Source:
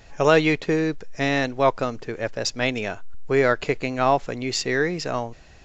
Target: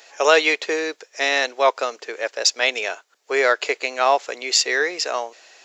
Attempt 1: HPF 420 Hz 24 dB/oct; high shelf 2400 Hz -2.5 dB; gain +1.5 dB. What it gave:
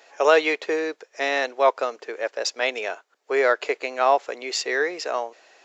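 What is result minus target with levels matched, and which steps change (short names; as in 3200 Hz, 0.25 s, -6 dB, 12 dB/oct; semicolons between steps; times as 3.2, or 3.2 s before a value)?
4000 Hz band -5.5 dB
change: high shelf 2400 Hz +9 dB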